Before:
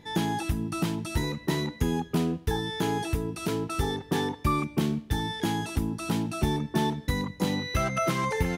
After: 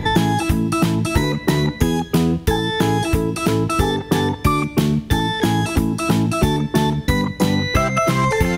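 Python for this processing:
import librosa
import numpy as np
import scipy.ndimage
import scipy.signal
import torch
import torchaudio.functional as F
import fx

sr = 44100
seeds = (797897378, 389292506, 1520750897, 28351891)

y = fx.band_squash(x, sr, depth_pct=100)
y = y * 10.0 ** (9.0 / 20.0)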